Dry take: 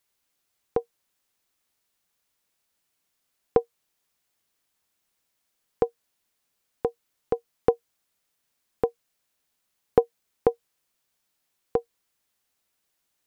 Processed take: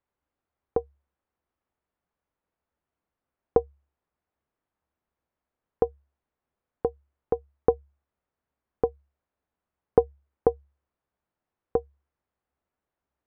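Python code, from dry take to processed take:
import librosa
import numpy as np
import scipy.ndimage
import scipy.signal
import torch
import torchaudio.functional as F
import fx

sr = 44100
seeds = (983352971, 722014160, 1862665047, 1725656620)

y = scipy.signal.sosfilt(scipy.signal.butter(2, 1200.0, 'lowpass', fs=sr, output='sos'), x)
y = fx.peak_eq(y, sr, hz=70.0, db=13.0, octaves=0.23)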